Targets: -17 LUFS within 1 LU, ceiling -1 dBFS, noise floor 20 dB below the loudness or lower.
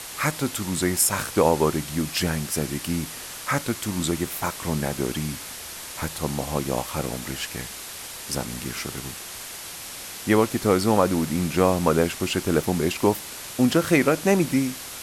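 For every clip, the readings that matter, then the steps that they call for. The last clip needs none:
noise floor -37 dBFS; noise floor target -45 dBFS; loudness -24.5 LUFS; peak -5.0 dBFS; loudness target -17.0 LUFS
-> denoiser 8 dB, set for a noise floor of -37 dBFS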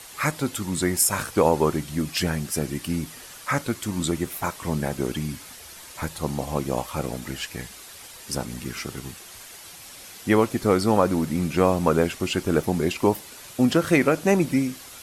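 noise floor -43 dBFS; noise floor target -45 dBFS
-> denoiser 6 dB, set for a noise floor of -43 dBFS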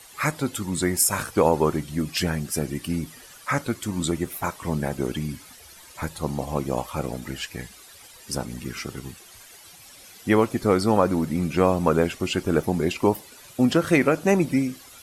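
noise floor -48 dBFS; loudness -24.5 LUFS; peak -5.0 dBFS; loudness target -17.0 LUFS
-> gain +7.5 dB; limiter -1 dBFS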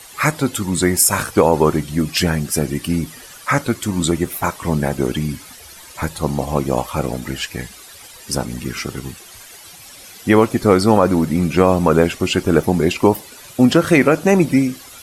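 loudness -17.5 LUFS; peak -1.0 dBFS; noise floor -40 dBFS

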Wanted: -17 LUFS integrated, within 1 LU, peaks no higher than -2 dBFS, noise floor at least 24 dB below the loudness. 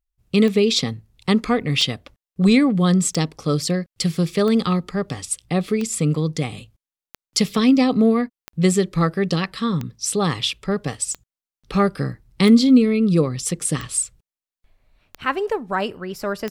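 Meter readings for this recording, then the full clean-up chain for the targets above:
clicks 13; loudness -20.5 LUFS; peak -4.5 dBFS; loudness target -17.0 LUFS
-> de-click; gain +3.5 dB; limiter -2 dBFS

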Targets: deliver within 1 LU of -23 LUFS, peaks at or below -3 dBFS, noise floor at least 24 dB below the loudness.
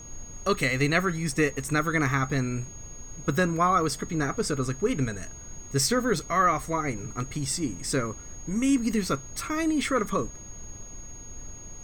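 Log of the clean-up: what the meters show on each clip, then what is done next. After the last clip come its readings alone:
steady tone 6600 Hz; tone level -43 dBFS; noise floor -43 dBFS; noise floor target -51 dBFS; loudness -27.0 LUFS; peak -9.5 dBFS; loudness target -23.0 LUFS
-> notch 6600 Hz, Q 30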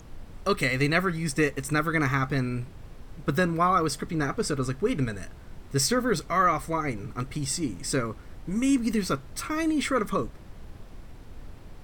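steady tone none; noise floor -46 dBFS; noise floor target -51 dBFS
-> noise print and reduce 6 dB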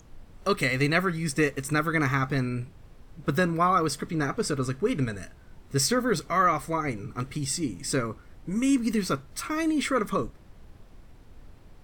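noise floor -51 dBFS; loudness -27.0 LUFS; peak -9.5 dBFS; loudness target -23.0 LUFS
-> gain +4 dB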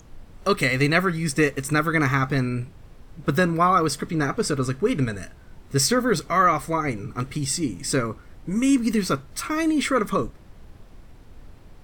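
loudness -23.0 LUFS; peak -5.5 dBFS; noise floor -47 dBFS

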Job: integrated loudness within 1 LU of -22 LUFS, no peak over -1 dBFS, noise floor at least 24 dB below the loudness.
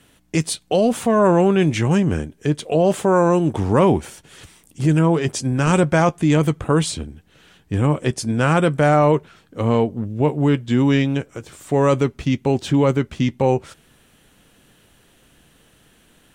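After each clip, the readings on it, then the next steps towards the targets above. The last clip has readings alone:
loudness -18.5 LUFS; peak -3.5 dBFS; loudness target -22.0 LUFS
-> gain -3.5 dB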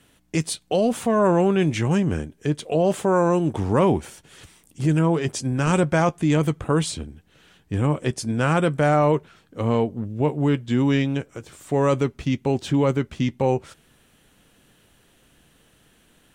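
loudness -22.0 LUFS; peak -7.0 dBFS; noise floor -60 dBFS

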